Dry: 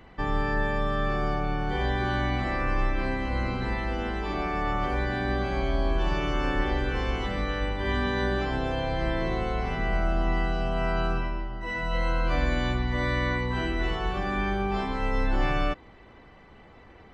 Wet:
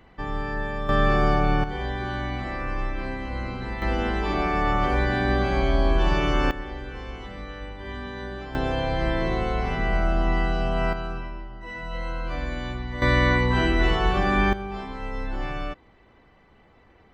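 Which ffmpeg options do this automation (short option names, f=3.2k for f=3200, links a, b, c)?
-af "asetnsamples=n=441:p=0,asendcmd='0.89 volume volume 7dB;1.64 volume volume -2.5dB;3.82 volume volume 5dB;6.51 volume volume -8dB;8.55 volume volume 3dB;10.93 volume volume -4.5dB;13.02 volume volume 7dB;14.53 volume volume -5dB',volume=-2.5dB"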